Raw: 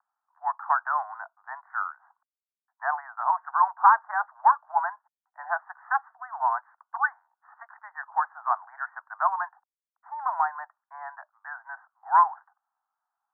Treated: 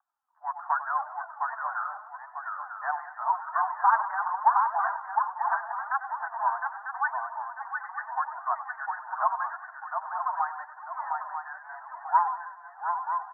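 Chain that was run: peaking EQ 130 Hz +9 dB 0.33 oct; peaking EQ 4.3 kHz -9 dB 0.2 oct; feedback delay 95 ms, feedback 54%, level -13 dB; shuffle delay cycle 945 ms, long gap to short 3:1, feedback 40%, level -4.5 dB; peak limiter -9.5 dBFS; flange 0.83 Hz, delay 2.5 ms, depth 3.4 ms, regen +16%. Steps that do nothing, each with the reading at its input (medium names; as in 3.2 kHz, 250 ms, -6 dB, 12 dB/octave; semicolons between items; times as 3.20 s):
peaking EQ 130 Hz: input has nothing below 600 Hz; peaking EQ 4.3 kHz: input has nothing above 1.9 kHz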